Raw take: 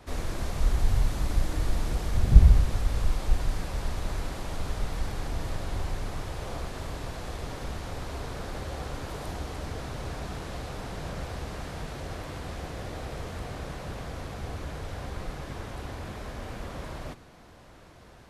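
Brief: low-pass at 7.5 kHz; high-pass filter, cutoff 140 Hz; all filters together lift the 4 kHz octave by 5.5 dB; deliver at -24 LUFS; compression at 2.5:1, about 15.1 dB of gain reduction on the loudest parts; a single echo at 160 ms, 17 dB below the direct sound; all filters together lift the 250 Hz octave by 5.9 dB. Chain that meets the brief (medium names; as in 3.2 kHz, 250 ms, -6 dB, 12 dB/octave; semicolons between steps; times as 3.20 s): high-pass 140 Hz; low-pass 7.5 kHz; peaking EQ 250 Hz +9 dB; peaking EQ 4 kHz +7 dB; compression 2.5:1, threshold -43 dBFS; delay 160 ms -17 dB; trim +19 dB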